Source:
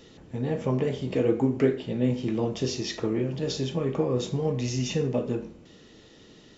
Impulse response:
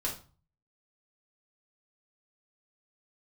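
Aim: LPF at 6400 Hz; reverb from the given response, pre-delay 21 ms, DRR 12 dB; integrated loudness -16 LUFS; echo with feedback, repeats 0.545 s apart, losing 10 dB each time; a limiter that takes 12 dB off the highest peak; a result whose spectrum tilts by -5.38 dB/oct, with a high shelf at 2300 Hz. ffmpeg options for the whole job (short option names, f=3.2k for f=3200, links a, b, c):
-filter_complex "[0:a]lowpass=6.4k,highshelf=f=2.3k:g=6,alimiter=limit=-22dB:level=0:latency=1,aecho=1:1:545|1090|1635|2180:0.316|0.101|0.0324|0.0104,asplit=2[a][b];[1:a]atrim=start_sample=2205,adelay=21[c];[b][c]afir=irnorm=-1:irlink=0,volume=-16dB[d];[a][d]amix=inputs=2:normalize=0,volume=15dB"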